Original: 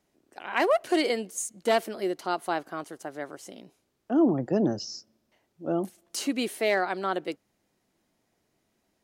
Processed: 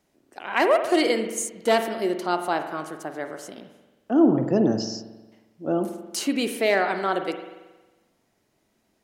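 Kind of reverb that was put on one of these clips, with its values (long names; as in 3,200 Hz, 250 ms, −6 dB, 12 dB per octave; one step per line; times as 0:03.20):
spring reverb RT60 1.2 s, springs 45 ms, chirp 80 ms, DRR 7 dB
level +3.5 dB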